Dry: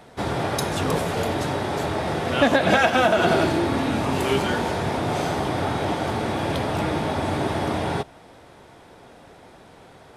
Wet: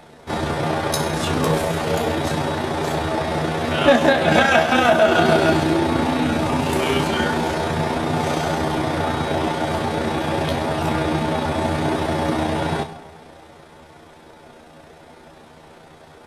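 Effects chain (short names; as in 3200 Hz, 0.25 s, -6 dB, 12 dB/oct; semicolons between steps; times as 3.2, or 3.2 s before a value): two-slope reverb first 0.46 s, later 2.2 s, from -18 dB, DRR 7.5 dB; granular stretch 1.6×, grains 67 ms; gain +3.5 dB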